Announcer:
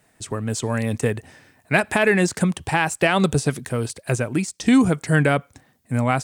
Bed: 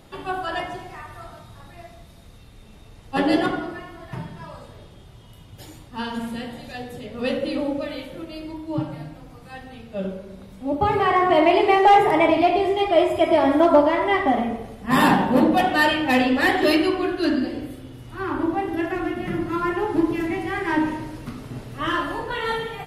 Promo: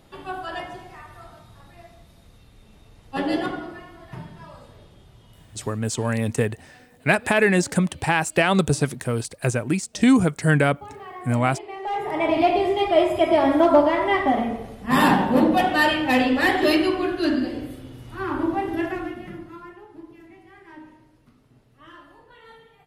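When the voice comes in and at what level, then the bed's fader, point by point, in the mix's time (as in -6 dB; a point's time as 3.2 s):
5.35 s, -0.5 dB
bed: 5.58 s -4.5 dB
6.04 s -20 dB
11.71 s -20 dB
12.4 s -0.5 dB
18.85 s -0.5 dB
19.87 s -22.5 dB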